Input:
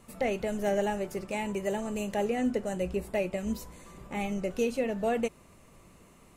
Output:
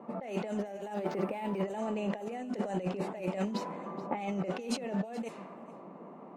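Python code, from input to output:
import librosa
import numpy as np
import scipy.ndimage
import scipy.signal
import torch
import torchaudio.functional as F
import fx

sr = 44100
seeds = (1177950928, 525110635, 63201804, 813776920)

y = scipy.signal.sosfilt(scipy.signal.butter(6, 180.0, 'highpass', fs=sr, output='sos'), x)
y = fx.peak_eq(y, sr, hz=810.0, db=7.0, octaves=0.87)
y = fx.env_lowpass(y, sr, base_hz=830.0, full_db=-22.0)
y = fx.over_compress(y, sr, threshold_db=-38.0, ratio=-1.0)
y = y + 10.0 ** (-18.5 / 20.0) * np.pad(y, (int(427 * sr / 1000.0), 0))[:len(y)]
y = fx.resample_linear(y, sr, factor=4, at=(0.94, 1.62))
y = y * librosa.db_to_amplitude(2.0)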